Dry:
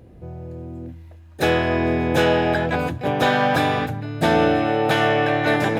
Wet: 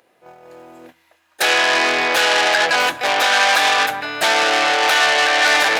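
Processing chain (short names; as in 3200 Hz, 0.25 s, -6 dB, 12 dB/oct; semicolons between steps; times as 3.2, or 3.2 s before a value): gate -32 dBFS, range -13 dB; HPF 1000 Hz 12 dB/oct; maximiser +19.5 dB; core saturation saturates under 3100 Hz; gain -1.5 dB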